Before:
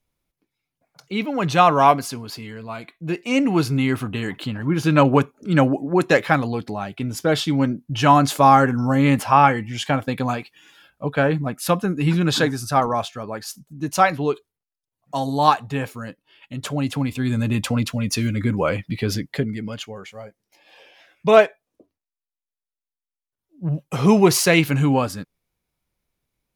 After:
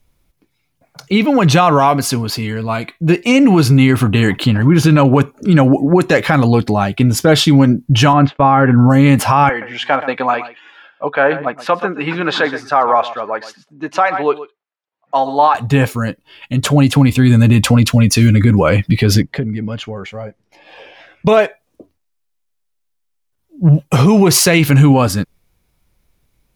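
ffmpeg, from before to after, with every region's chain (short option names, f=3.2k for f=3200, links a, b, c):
-filter_complex "[0:a]asettb=1/sr,asplit=3[a][b][c];[a]atrim=end=8.134[d];[b]atrim=start=8.13:end=8.9,asetpts=PTS-STARTPTS,afade=t=in:d=0.004:c=qsin,afade=t=out:st=0.766:d=0.004:c=qsin,lowpass=f=2.9k:w=0.5412,lowpass=f=2.9k:w=1.3066,agate=range=-33dB:threshold=-23dB:ratio=3:release=100:detection=peak[e];[c]atrim=start=8.896[f];[d][e]acrossfade=d=0.004:c1=hsin:c2=qsin[g];[g][f]acrossfade=d=0.004:c1=qsin:c2=hsin,asettb=1/sr,asplit=3[h][i][j];[h]atrim=end=9.494[k];[i]atrim=start=9.49:end=15.55,asetpts=PTS-STARTPTS,afade=t=in:d=0.004:c=qsin,afade=t=out:st=6.056:d=0.004:c=qsin,highpass=570,lowpass=2.2k,aecho=1:1:124:0.168,atrim=end_sample=267246[l];[j]atrim=start=15.546[m];[k][l]acrossfade=d=0.004:c1=hsin:c2=qsin[n];[n][m]acrossfade=d=0.004:c1=qsin:c2=hsin,asettb=1/sr,asplit=3[o][p][q];[o]atrim=end=19.224[r];[p]atrim=start=19.22:end=21.27,asetpts=PTS-STARTPTS,afade=t=in:d=0.004:c=qsin,afade=t=out:st=2.046:d=0.004:c=qsin,aemphasis=mode=reproduction:type=75fm,acompressor=threshold=-38dB:ratio=2:attack=3.2:release=140:knee=1:detection=peak[s];[q]atrim=start=21.266[t];[r][s]acrossfade=d=0.004:c1=hsin:c2=qsin[u];[u][t]acrossfade=d=0.004:c1=qsin:c2=hsin,lowshelf=f=100:g=9,acompressor=threshold=-17dB:ratio=2.5,alimiter=level_in=13.5dB:limit=-1dB:release=50:level=0:latency=1,volume=-1dB"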